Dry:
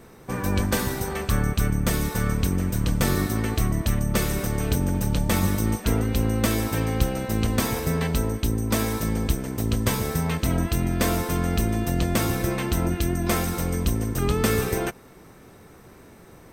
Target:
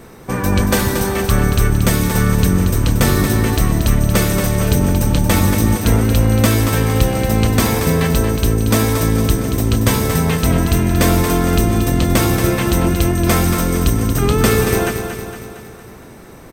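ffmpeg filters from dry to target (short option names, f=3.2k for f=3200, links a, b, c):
-af "aecho=1:1:230|460|690|920|1150|1380:0.398|0.215|0.116|0.0627|0.0339|0.0183,acontrast=67,volume=2dB"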